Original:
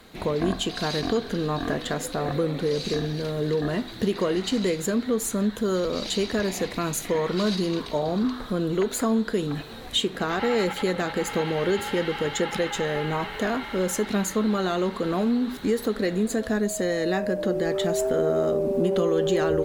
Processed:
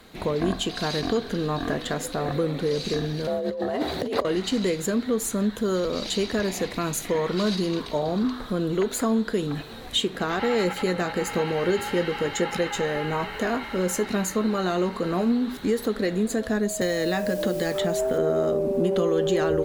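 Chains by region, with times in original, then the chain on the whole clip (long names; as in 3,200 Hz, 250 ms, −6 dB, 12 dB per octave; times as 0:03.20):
0:03.27–0:04.25: parametric band 580 Hz +11 dB 1.1 octaves + compressor whose output falls as the input rises −27 dBFS + frequency shifter +51 Hz
0:10.63–0:15.32: notch filter 3,400 Hz, Q 8.5 + double-tracking delay 17 ms −11 dB
0:16.81–0:18.18: notch filter 380 Hz + bit-depth reduction 8 bits, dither none + multiband upward and downward compressor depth 100%
whole clip: no processing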